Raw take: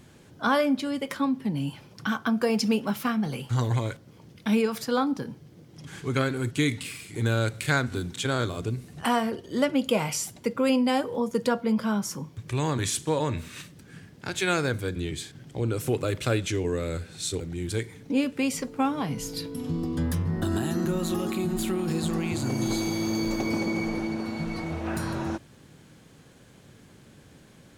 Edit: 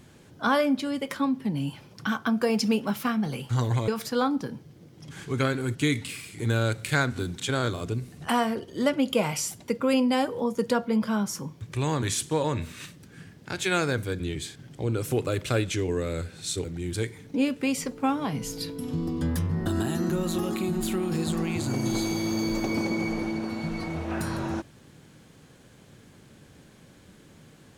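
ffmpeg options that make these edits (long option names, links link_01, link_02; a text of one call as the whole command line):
ffmpeg -i in.wav -filter_complex "[0:a]asplit=2[link_01][link_02];[link_01]atrim=end=3.882[link_03];[link_02]atrim=start=4.638[link_04];[link_03][link_04]acrossfade=duration=0.004:curve1=hsin:curve2=hsin" out.wav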